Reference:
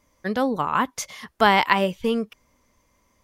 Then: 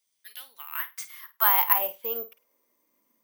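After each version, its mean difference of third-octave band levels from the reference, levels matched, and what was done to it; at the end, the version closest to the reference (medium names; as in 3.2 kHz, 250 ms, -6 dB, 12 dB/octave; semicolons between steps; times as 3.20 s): 12.0 dB: high-pass sweep 3.6 kHz -> 250 Hz, 0.10–3.07 s; on a send: flutter echo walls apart 8.8 m, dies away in 0.23 s; on the sum: careless resampling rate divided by 3×, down none, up zero stuff; trim -12 dB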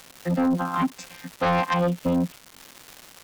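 8.5 dB: vocoder on a held chord bare fifth, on F3; crackle 450 per s -34 dBFS; in parallel at -7 dB: sine folder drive 11 dB, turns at -7.5 dBFS; on the sum: trim -8 dB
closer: second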